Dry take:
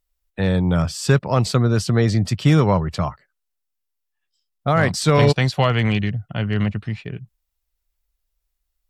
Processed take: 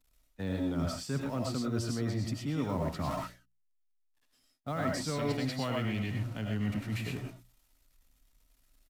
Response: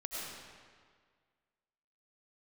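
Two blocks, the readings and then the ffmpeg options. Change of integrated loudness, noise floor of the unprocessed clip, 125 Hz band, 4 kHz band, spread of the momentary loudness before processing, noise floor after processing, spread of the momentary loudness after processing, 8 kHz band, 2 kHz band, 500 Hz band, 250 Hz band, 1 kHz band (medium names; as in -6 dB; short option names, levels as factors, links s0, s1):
-15.0 dB, -77 dBFS, -16.5 dB, -13.5 dB, 13 LU, -73 dBFS, 6 LU, -12.5 dB, -15.5 dB, -15.5 dB, -12.0 dB, -15.0 dB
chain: -filter_complex "[0:a]aeval=exprs='val(0)+0.5*0.0299*sgn(val(0))':c=same,agate=range=0.0224:threshold=0.0794:ratio=3:detection=peak,equalizer=f=260:t=o:w=0.35:g=12,aresample=32000,aresample=44100,acrossover=split=450|2800[s0][s1][s2];[s1]acrusher=bits=6:mode=log:mix=0:aa=0.000001[s3];[s0][s3][s2]amix=inputs=3:normalize=0,bandreject=f=60:t=h:w=6,bandreject=f=120:t=h:w=6,bandreject=f=180:t=h:w=6,areverse,acompressor=threshold=0.0398:ratio=6,areverse[s4];[1:a]atrim=start_sample=2205,afade=t=out:st=0.18:d=0.01,atrim=end_sample=8379[s5];[s4][s5]afir=irnorm=-1:irlink=0"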